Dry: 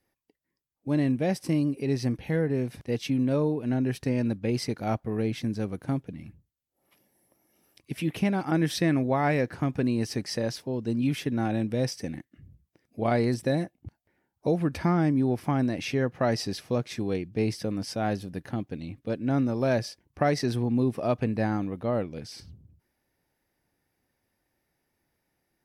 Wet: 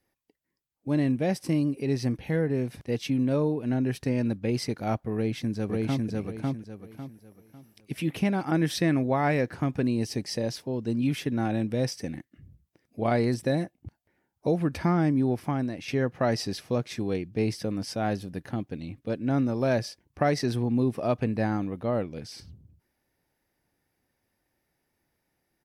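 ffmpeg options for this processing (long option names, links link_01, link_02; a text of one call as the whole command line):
ffmpeg -i in.wav -filter_complex "[0:a]asplit=2[link_01][link_02];[link_02]afade=type=in:start_time=5.14:duration=0.01,afade=type=out:start_time=6.08:duration=0.01,aecho=0:1:550|1100|1650|2200:0.891251|0.267375|0.0802126|0.0240638[link_03];[link_01][link_03]amix=inputs=2:normalize=0,asettb=1/sr,asplit=3[link_04][link_05][link_06];[link_04]atrim=end=9.874[link_07];[link_05]atrim=start=9.87:end=10.52,asetpts=PTS-STARTPTS,afade=type=in:duration=0.004:curve=qsin,afade=type=out:start_time=0.646:duration=0.004:curve=qsin,equalizer=frequency=1400:width_type=o:width=0.78:gain=-7.5[link_08];[link_06]atrim=start=10.516[link_09];[link_07][link_08]acrossfade=duration=0.004:curve1=hsin:curve2=qsin[link_10];[link_10][link_09]acrossfade=duration=0.004:curve1=qsin:curve2=hsin,asplit=2[link_11][link_12];[link_11]atrim=end=15.88,asetpts=PTS-STARTPTS,afade=type=out:start_time=15.29:duration=0.59:silence=0.421697[link_13];[link_12]atrim=start=15.88,asetpts=PTS-STARTPTS,afade=type=in:duration=0.004:curve=hsin:silence=0.421697[link_14];[link_13][link_14]concat=n=2:v=0:a=1" out.wav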